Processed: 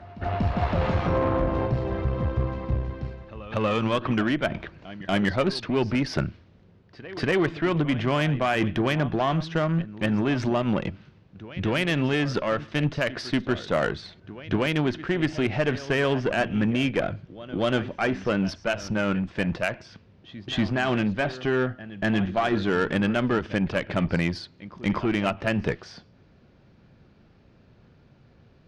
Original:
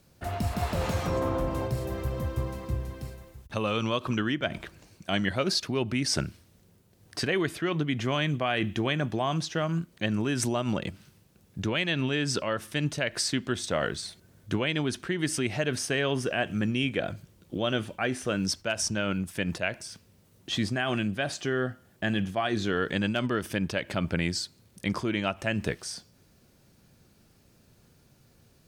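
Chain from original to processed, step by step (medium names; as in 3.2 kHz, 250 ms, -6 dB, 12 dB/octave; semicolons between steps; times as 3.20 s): Gaussian low-pass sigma 2.4 samples; reverse echo 238 ms -17 dB; Chebyshev shaper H 5 -26 dB, 8 -23 dB, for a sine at -13.5 dBFS; trim +3.5 dB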